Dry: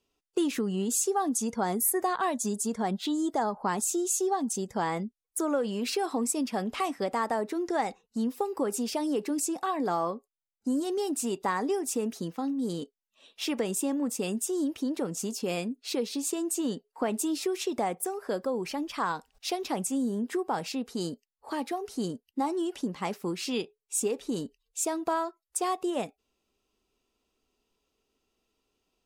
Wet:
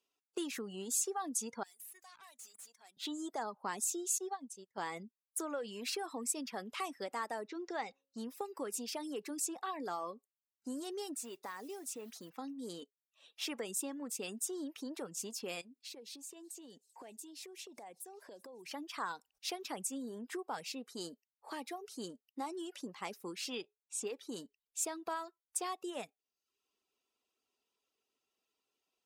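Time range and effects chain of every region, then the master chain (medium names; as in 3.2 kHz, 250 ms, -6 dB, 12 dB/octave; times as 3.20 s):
1.63–2.97 s: differentiator + compression, threshold -27 dBFS + valve stage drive 44 dB, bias 0.7
4.18–4.78 s: brick-wall FIR low-pass 13 kHz + upward expansion 2.5:1, over -41 dBFS
7.47–8.18 s: low-pass 6 kHz 24 dB/octave + de-hum 272.6 Hz, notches 2
11.15–12.30 s: compression 2:1, threshold -36 dBFS + modulation noise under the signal 21 dB
15.61–18.71 s: peaking EQ 1.3 kHz -12.5 dB 0.39 oct + compression 16:1, threshold -38 dBFS + feedback echo behind a high-pass 194 ms, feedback 74%, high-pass 4.4 kHz, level -20 dB
23.55–24.07 s: low-pass 11 kHz + treble shelf 7.8 kHz -8.5 dB
whole clip: reverb removal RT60 0.59 s; high-pass 610 Hz 6 dB/octave; dynamic bell 780 Hz, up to -4 dB, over -41 dBFS, Q 0.98; trim -5 dB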